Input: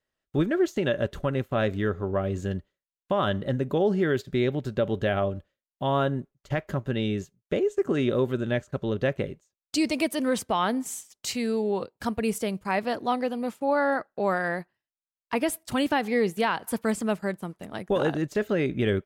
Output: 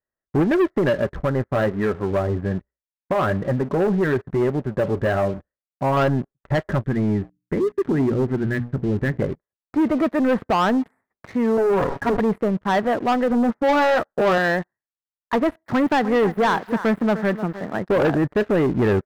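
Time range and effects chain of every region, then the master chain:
0.94–5.97 s: peaking EQ 61 Hz +6 dB 0.26 oct + flange 1.1 Hz, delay 4.2 ms, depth 3.9 ms, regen -52%
6.81–9.22 s: Butterworth band-stop 790 Hz, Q 0.53 + hum notches 60/120/180/240/300 Hz
11.57–12.20 s: comb filter that takes the minimum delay 7.2 ms + high-pass 54 Hz 6 dB/octave + decay stretcher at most 44 dB/s
13.30–14.38 s: tilt EQ -1.5 dB/octave + doubling 13 ms -6 dB
15.66–17.79 s: zero-crossing glitches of -29.5 dBFS + high-pass 110 Hz + delay 303 ms -16.5 dB
whole clip: elliptic low-pass 1.9 kHz; waveshaping leveller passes 3

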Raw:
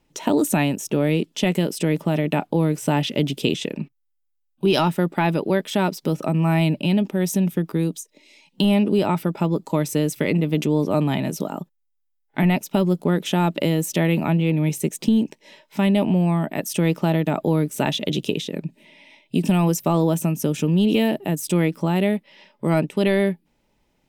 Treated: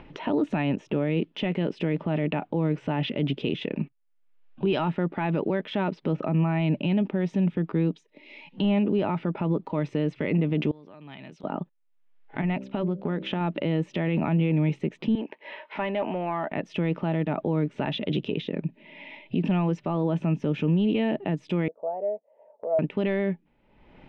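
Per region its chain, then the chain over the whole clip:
10.71–11.44 s: steep low-pass 11 kHz + compression, threshold -25 dBFS + pre-emphasis filter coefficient 0.9
12.41–13.41 s: de-hum 65.03 Hz, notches 9 + compression 5:1, threshold -23 dBFS
15.15–16.52 s: frequency weighting A + compression 1.5:1, threshold -39 dBFS + overdrive pedal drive 18 dB, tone 1.1 kHz, clips at -13.5 dBFS
21.68–22.79 s: Butterworth band-pass 600 Hz, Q 2.8 + comb 4.4 ms, depth 48%
whole clip: upward compressor, threshold -33 dBFS; low-pass 2.9 kHz 24 dB/octave; peak limiter -16.5 dBFS

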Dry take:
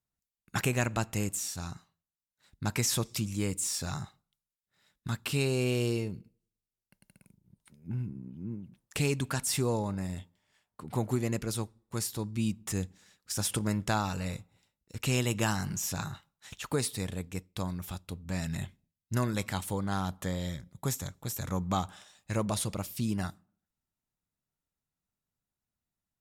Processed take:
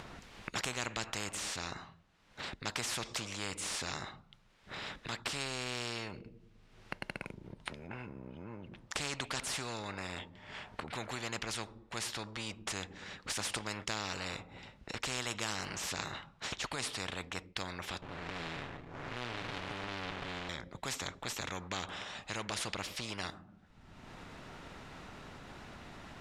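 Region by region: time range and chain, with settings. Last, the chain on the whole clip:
18.02–20.49 s: spectral blur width 245 ms + comb 7 ms, depth 73% + sliding maximum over 65 samples
whole clip: low-pass 2.8 kHz 12 dB/octave; upward compressor, threshold -38 dBFS; spectrum-flattening compressor 4:1

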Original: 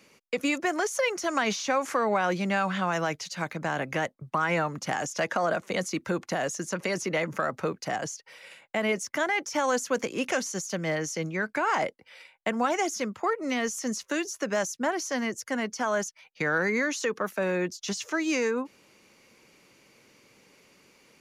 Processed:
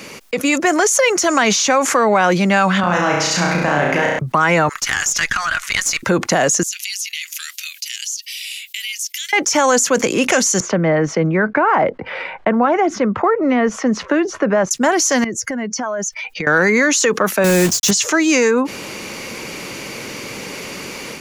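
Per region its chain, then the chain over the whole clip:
2.80–4.19 s: treble shelf 6.3 kHz -9 dB + compression 2:1, threshold -33 dBFS + flutter echo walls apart 5.8 m, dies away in 0.84 s
4.69–6.03 s: high-pass 1.4 kHz 24 dB/octave + valve stage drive 25 dB, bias 0.5
6.63–9.33 s: steep high-pass 2.7 kHz + compression 2:1, threshold -56 dBFS + peaking EQ 13 kHz +14 dB 0.21 oct
10.60–14.71 s: low-pass 1.5 kHz + three bands compressed up and down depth 40%
15.24–16.47 s: spectral contrast enhancement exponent 1.5 + compression 5:1, threshold -43 dBFS
17.44–17.91 s: block-companded coder 3-bit + tone controls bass +7 dB, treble +5 dB
whole clip: level rider gain up to 11.5 dB; dynamic bell 7.2 kHz, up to +6 dB, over -39 dBFS, Q 2.9; level flattener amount 50%

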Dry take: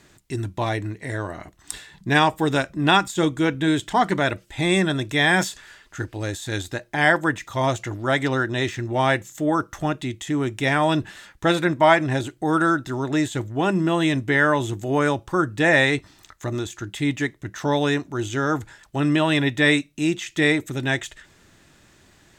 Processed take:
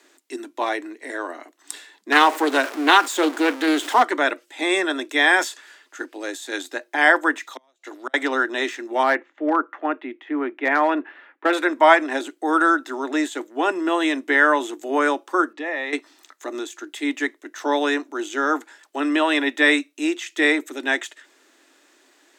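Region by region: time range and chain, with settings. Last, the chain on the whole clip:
2.12–4.03 s: jump at every zero crossing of -26.5 dBFS + loudspeaker Doppler distortion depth 0.24 ms
7.43–8.14 s: high-pass 450 Hz 6 dB/octave + inverted gate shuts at -18 dBFS, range -38 dB + peaking EQ 3.9 kHz +6.5 dB 0.25 oct
9.03–11.53 s: low-pass 2.4 kHz 24 dB/octave + overload inside the chain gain 13 dB
15.53–15.93 s: distance through air 150 m + compression 3:1, threshold -28 dBFS + Butterworth band-stop 1.5 kHz, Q 5.7
whole clip: steep high-pass 260 Hz 72 dB/octave; dynamic bell 1.3 kHz, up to +5 dB, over -34 dBFS, Q 0.76; trim -1 dB

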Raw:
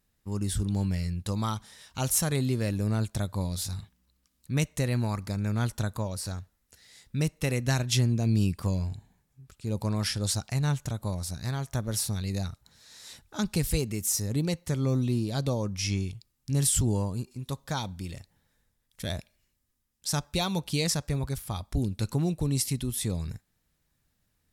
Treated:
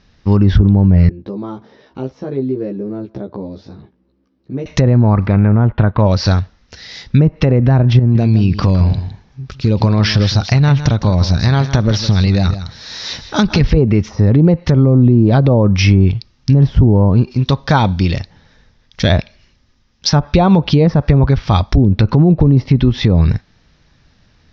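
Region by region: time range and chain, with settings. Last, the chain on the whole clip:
1.09–4.66 s: compression 2.5:1, threshold -38 dBFS + band-pass filter 370 Hz, Q 2.5 + doubling 15 ms -2 dB
5.27–6.00 s: companding laws mixed up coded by A + low-pass 2.9 kHz 24 dB/octave
7.99–13.61 s: compression, threshold -30 dBFS + delay 160 ms -12 dB
whole clip: low-pass that closes with the level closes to 860 Hz, closed at -23.5 dBFS; steep low-pass 5.9 kHz 72 dB/octave; loudness maximiser +24 dB; trim -1 dB

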